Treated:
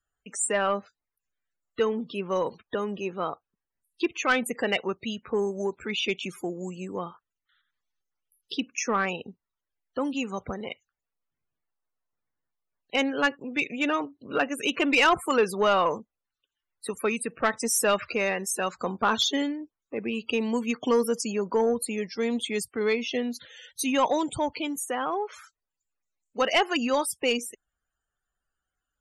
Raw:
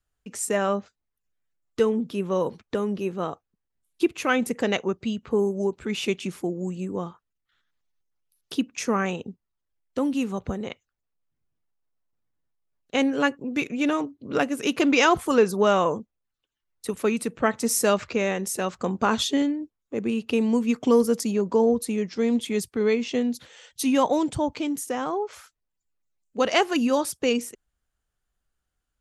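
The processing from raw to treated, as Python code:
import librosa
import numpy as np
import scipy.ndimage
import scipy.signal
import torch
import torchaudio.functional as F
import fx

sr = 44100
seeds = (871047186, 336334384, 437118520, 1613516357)

y = fx.spec_topn(x, sr, count=64)
y = fx.low_shelf(y, sr, hz=500.0, db=-12.0)
y = 10.0 ** (-17.0 / 20.0) * np.tanh(y / 10.0 ** (-17.0 / 20.0))
y = y * 10.0 ** (4.0 / 20.0)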